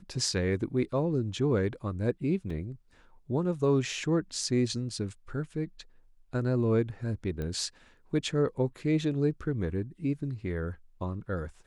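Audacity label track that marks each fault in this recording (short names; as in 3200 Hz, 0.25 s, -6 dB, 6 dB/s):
2.500000	2.500000	gap 3.5 ms
7.420000	7.420000	pop -24 dBFS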